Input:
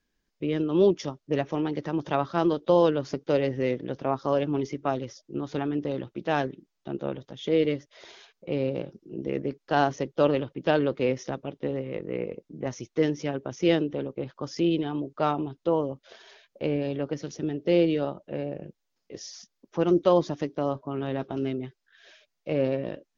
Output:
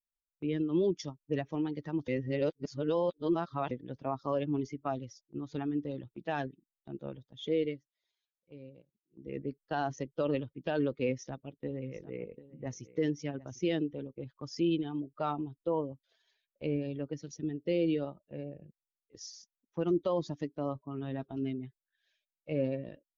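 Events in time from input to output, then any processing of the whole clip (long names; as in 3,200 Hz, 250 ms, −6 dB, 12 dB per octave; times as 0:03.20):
0:02.08–0:03.71: reverse
0:07.58–0:09.36: duck −10.5 dB, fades 0.27 s
0:11.07–0:13.61: single-tap delay 748 ms −12 dB
whole clip: spectral dynamics exaggerated over time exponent 1.5; noise gate −53 dBFS, range −8 dB; brickwall limiter −19 dBFS; level −2 dB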